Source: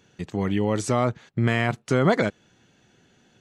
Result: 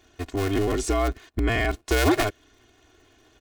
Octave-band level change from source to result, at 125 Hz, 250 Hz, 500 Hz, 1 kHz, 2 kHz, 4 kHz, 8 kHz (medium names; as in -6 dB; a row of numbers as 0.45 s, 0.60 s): -3.5 dB, -1.5 dB, -1.0 dB, -0.5 dB, +1.0 dB, +4.0 dB, +4.0 dB